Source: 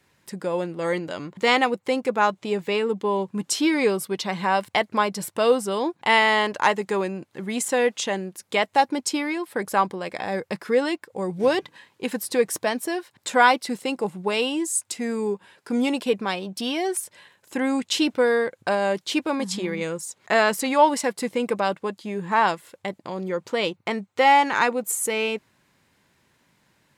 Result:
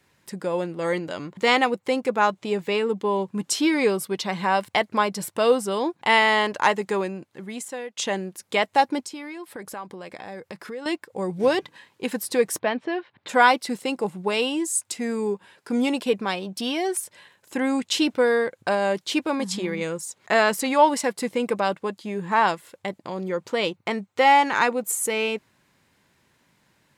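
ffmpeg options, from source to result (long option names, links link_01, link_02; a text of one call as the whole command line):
ffmpeg -i in.wav -filter_complex "[0:a]asettb=1/sr,asplit=3[link_01][link_02][link_03];[link_01]atrim=end=9.064[link_04];[link_02]atrim=start=9.06:end=10.86,asetpts=PTS-STARTPTS,afade=type=in:duration=0.004:curve=qsin,afade=type=out:start_time=1.796:duration=0.004:curve=qsin,acompressor=threshold=-36dB:ratio=3:attack=3.2:release=140:knee=1:detection=peak[link_05];[link_03]atrim=start=10.856[link_06];[link_04][link_05]acrossfade=duration=0.004:curve1=hsin:curve2=qsin[link_07];[link_07][link_06]acrossfade=duration=0.004:curve1=qsin:curve2=hsin,asplit=3[link_08][link_09][link_10];[link_08]afade=type=out:start_time=12.58:duration=0.02[link_11];[link_09]lowpass=frequency=3400:width=0.5412,lowpass=frequency=3400:width=1.3066,afade=type=in:start_time=12.58:duration=0.02,afade=type=out:start_time=13.28:duration=0.02[link_12];[link_10]afade=type=in:start_time=13.28:duration=0.02[link_13];[link_11][link_12][link_13]amix=inputs=3:normalize=0,asplit=2[link_14][link_15];[link_14]atrim=end=7.97,asetpts=PTS-STARTPTS,afade=type=out:start_time=6.91:duration=1.06:silence=0.0891251[link_16];[link_15]atrim=start=7.97,asetpts=PTS-STARTPTS,afade=type=in:duration=0.004:curve=hsin:silence=0.0891251[link_17];[link_16][link_17]concat=n=2:v=0:a=1" out.wav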